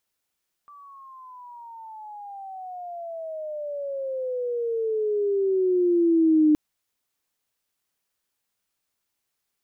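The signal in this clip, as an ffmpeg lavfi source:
-f lavfi -i "aevalsrc='pow(10,(-14+30*(t/5.87-1))/20)*sin(2*PI*1170*5.87/(-23.5*log(2)/12)*(exp(-23.5*log(2)/12*t/5.87)-1))':d=5.87:s=44100"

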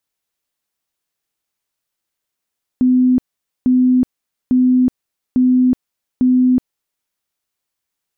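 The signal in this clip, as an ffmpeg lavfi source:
-f lavfi -i "aevalsrc='0.355*sin(2*PI*253*mod(t,0.85))*lt(mod(t,0.85),94/253)':d=4.25:s=44100"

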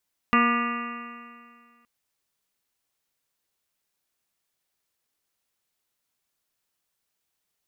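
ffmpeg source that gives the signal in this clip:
-f lavfi -i "aevalsrc='0.0944*pow(10,-3*t/2.04)*sin(2*PI*236.13*t)+0.0266*pow(10,-3*t/2.04)*sin(2*PI*473.04*t)+0.0211*pow(10,-3*t/2.04)*sin(2*PI*711.5*t)+0.0211*pow(10,-3*t/2.04)*sin(2*PI*952.27*t)+0.126*pow(10,-3*t/2.04)*sin(2*PI*1196.11*t)+0.0251*pow(10,-3*t/2.04)*sin(2*PI*1443.76*t)+0.0224*pow(10,-3*t/2.04)*sin(2*PI*1695.94*t)+0.0562*pow(10,-3*t/2.04)*sin(2*PI*1953.33*t)+0.02*pow(10,-3*t/2.04)*sin(2*PI*2216.61*t)+0.0282*pow(10,-3*t/2.04)*sin(2*PI*2486.41*t)+0.0422*pow(10,-3*t/2.04)*sin(2*PI*2763.37*t)':d=1.52:s=44100"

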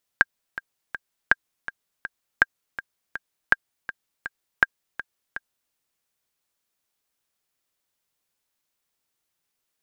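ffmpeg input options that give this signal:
-f lavfi -i "aevalsrc='pow(10,(-1.5-15.5*gte(mod(t,3*60/163),60/163))/20)*sin(2*PI*1600*mod(t,60/163))*exp(-6.91*mod(t,60/163)/0.03)':d=5.52:s=44100"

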